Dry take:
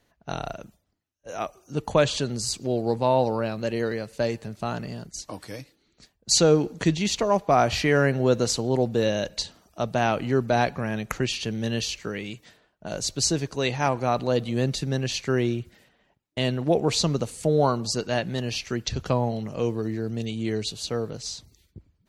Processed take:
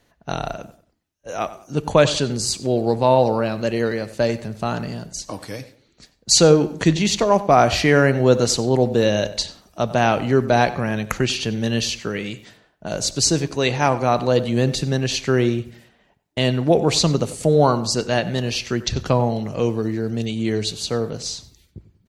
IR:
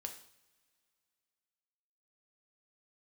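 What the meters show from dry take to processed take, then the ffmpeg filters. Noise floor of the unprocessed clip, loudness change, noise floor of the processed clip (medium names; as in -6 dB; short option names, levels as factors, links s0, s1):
-69 dBFS, +5.5 dB, -63 dBFS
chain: -filter_complex "[0:a]asplit=2[s0][s1];[s1]adelay=94,lowpass=f=2800:p=1,volume=0.178,asplit=2[s2][s3];[s3]adelay=94,lowpass=f=2800:p=1,volume=0.35,asplit=2[s4][s5];[s5]adelay=94,lowpass=f=2800:p=1,volume=0.35[s6];[s0][s2][s4][s6]amix=inputs=4:normalize=0,asplit=2[s7][s8];[1:a]atrim=start_sample=2205,atrim=end_sample=3528,asetrate=23373,aresample=44100[s9];[s8][s9]afir=irnorm=-1:irlink=0,volume=0.224[s10];[s7][s10]amix=inputs=2:normalize=0,volume=1.58"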